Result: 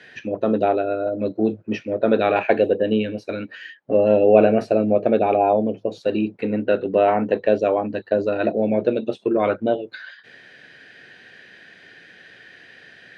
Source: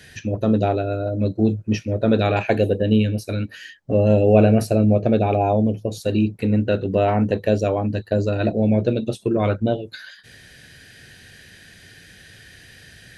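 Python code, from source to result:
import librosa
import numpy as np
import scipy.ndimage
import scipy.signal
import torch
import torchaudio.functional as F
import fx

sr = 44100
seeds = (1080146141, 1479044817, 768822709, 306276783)

y = fx.bandpass_edges(x, sr, low_hz=310.0, high_hz=2600.0)
y = F.gain(torch.from_numpy(y), 3.0).numpy()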